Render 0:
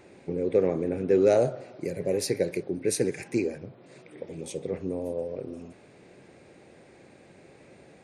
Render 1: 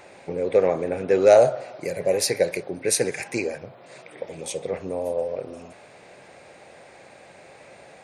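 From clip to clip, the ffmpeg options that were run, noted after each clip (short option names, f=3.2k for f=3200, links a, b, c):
-af "lowshelf=f=470:t=q:w=1.5:g=-9,volume=8.5dB"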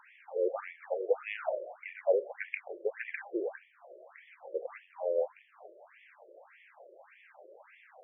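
-af "afftfilt=real='re*between(b*sr/1024,430*pow(2500/430,0.5+0.5*sin(2*PI*1.7*pts/sr))/1.41,430*pow(2500/430,0.5+0.5*sin(2*PI*1.7*pts/sr))*1.41)':imag='im*between(b*sr/1024,430*pow(2500/430,0.5+0.5*sin(2*PI*1.7*pts/sr))/1.41,430*pow(2500/430,0.5+0.5*sin(2*PI*1.7*pts/sr))*1.41)':win_size=1024:overlap=0.75,volume=-3.5dB"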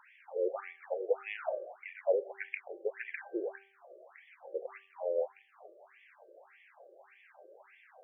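-af "bandreject=f=391.8:t=h:w=4,bandreject=f=783.6:t=h:w=4,bandreject=f=1.1754k:t=h:w=4,bandreject=f=1.5672k:t=h:w=4,volume=-2dB"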